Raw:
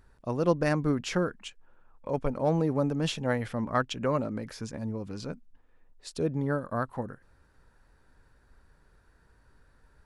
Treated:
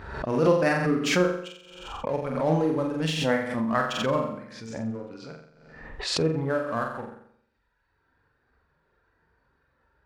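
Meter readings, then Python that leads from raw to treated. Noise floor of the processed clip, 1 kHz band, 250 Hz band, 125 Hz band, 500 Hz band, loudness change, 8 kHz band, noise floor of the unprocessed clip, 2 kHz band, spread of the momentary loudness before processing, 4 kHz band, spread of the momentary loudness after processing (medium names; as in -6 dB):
-72 dBFS, +4.5 dB, +3.0 dB, +1.0 dB, +4.5 dB, +4.0 dB, +6.0 dB, -63 dBFS, +7.0 dB, 15 LU, +8.0 dB, 18 LU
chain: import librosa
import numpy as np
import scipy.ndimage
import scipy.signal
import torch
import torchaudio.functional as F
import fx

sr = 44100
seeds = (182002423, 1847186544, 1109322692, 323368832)

p1 = fx.dereverb_blind(x, sr, rt60_s=1.4)
p2 = scipy.signal.sosfilt(scipy.signal.butter(2, 48.0, 'highpass', fs=sr, output='sos'), p1)
p3 = fx.env_lowpass(p2, sr, base_hz=3000.0, full_db=-27.5)
p4 = fx.dynamic_eq(p3, sr, hz=2100.0, q=1.0, threshold_db=-46.0, ratio=4.0, max_db=4)
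p5 = fx.hpss(p4, sr, part='harmonic', gain_db=7)
p6 = fx.low_shelf(p5, sr, hz=180.0, db=-8.5)
p7 = np.sign(p6) * np.maximum(np.abs(p6) - 10.0 ** (-35.5 / 20.0), 0.0)
p8 = p6 + (p7 * librosa.db_to_amplitude(-3.5))
p9 = fx.doubler(p8, sr, ms=31.0, db=-11.0)
p10 = fx.room_flutter(p9, sr, wall_m=7.6, rt60_s=0.65)
p11 = fx.pre_swell(p10, sr, db_per_s=53.0)
y = p11 * librosa.db_to_amplitude(-5.0)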